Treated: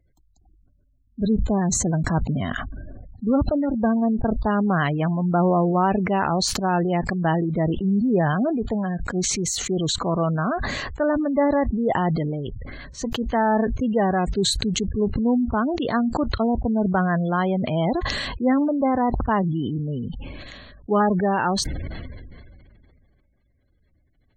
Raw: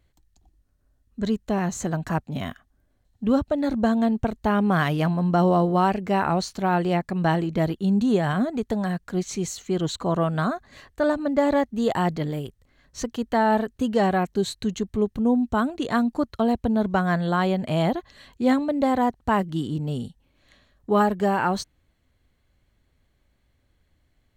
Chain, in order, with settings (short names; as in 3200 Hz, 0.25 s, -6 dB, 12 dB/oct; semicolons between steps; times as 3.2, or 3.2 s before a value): 1.2–2.46 low shelf 270 Hz +5 dB; spectral gate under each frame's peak -25 dB strong; sustainer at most 24 dB/s